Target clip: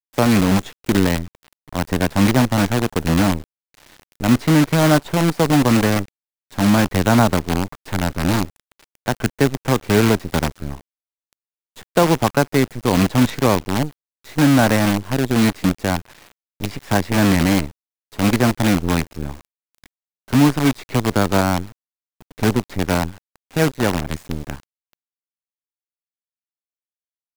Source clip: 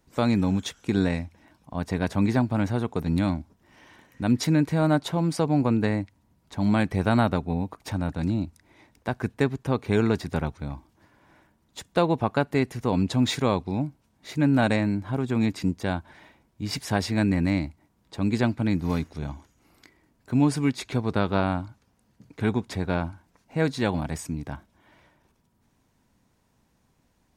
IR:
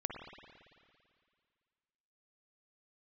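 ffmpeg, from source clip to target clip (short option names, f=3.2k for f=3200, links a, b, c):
-filter_complex "[0:a]acrossover=split=240|580|3100[a][b][c][d];[d]acompressor=threshold=-53dB:ratio=6[e];[a][b][c][e]amix=inputs=4:normalize=0,asplit=3[f][g][h];[f]afade=t=out:st=23.57:d=0.02[i];[g]aeval=exprs='sgn(val(0))*max(abs(val(0))-0.00841,0)':c=same,afade=t=in:st=23.57:d=0.02,afade=t=out:st=24.06:d=0.02[j];[h]afade=t=in:st=24.06:d=0.02[k];[i][j][k]amix=inputs=3:normalize=0,acrusher=bits=5:dc=4:mix=0:aa=0.000001,volume=7dB"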